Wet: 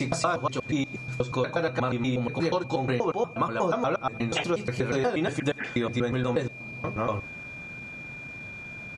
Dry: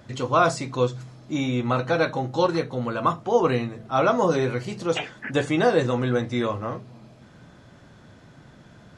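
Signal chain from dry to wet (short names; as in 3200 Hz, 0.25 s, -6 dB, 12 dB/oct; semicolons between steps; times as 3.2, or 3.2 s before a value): slices in reverse order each 0.12 s, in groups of 6; whine 2400 Hz -41 dBFS; compressor 6:1, threshold -26 dBFS, peak gain reduction 11.5 dB; echo 96 ms -24 dB; gain +3 dB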